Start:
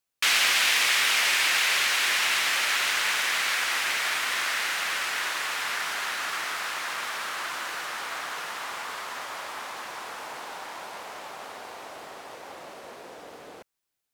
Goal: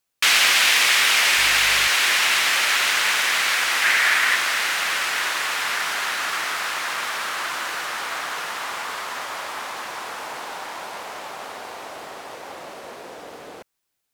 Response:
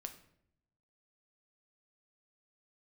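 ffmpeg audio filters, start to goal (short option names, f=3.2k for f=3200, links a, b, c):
-filter_complex "[0:a]asettb=1/sr,asplit=3[a][b][c];[a]atrim=end=1.374[d];[b]atrim=start=1.37:end=1.88,asetpts=PTS-STARTPTS,afade=t=in:d=0.004:c=qsin,afade=t=out:st=0.506:d=0.004:c=qsin,aeval=exprs='val(0)+0.00398*(sin(2*PI*50*n/s)+sin(2*PI*2*50*n/s)/2+sin(2*PI*3*50*n/s)/3+sin(2*PI*4*50*n/s)/4+sin(2*PI*5*50*n/s)/5)':c=same[e];[c]atrim=start=1.876[f];[d][e]acrossfade=d=0.004:c1=hsin:c2=qsin[g];[g][f]acrossfade=d=0.004:c1=qsin:c2=hsin,asettb=1/sr,asplit=3[h][i][j];[h]atrim=end=3.824[k];[i]atrim=start=3.82:end=4.36,asetpts=PTS-STARTPTS,afade=t=in:d=0.004:c=qsin,afade=t=out:st=0.536:d=0.004:c=qsin,equalizer=f=1.8k:t=o:w=0.73:g=7[l];[j]atrim=start=4.356[m];[k][l]acrossfade=d=0.004:c1=hsin:c2=qsin[n];[n][m]acrossfade=d=0.004:c1=qsin:c2=hsin,volume=5.5dB"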